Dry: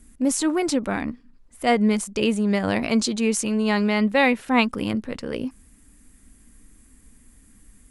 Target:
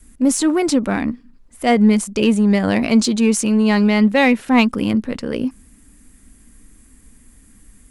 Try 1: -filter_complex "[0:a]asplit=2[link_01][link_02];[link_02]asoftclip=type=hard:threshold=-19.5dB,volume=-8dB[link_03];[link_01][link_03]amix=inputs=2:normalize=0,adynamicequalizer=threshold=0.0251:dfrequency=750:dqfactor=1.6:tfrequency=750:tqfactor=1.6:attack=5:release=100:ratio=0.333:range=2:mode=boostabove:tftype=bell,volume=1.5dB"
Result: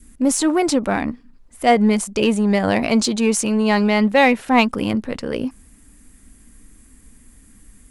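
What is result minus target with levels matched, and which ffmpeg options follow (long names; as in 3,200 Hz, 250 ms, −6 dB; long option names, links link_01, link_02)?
1,000 Hz band +4.5 dB
-filter_complex "[0:a]asplit=2[link_01][link_02];[link_02]asoftclip=type=hard:threshold=-19.5dB,volume=-8dB[link_03];[link_01][link_03]amix=inputs=2:normalize=0,adynamicequalizer=threshold=0.0251:dfrequency=230:dqfactor=1.6:tfrequency=230:tqfactor=1.6:attack=5:release=100:ratio=0.333:range=2:mode=boostabove:tftype=bell,volume=1.5dB"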